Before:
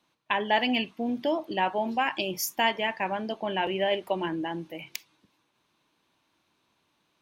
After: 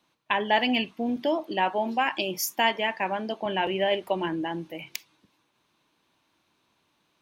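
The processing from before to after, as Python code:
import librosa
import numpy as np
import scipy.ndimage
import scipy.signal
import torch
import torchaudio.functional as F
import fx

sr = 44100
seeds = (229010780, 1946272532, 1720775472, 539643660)

y = fx.highpass(x, sr, hz=160.0, slope=12, at=(1.16, 3.46))
y = y * 10.0 ** (1.5 / 20.0)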